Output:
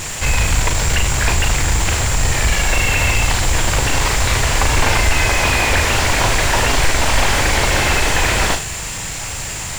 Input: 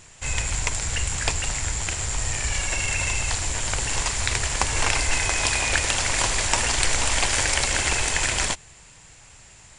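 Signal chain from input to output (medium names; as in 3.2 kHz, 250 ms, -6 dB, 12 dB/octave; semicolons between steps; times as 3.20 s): power-law waveshaper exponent 0.5; flutter echo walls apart 6.7 m, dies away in 0.29 s; slew-rate limiter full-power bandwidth 510 Hz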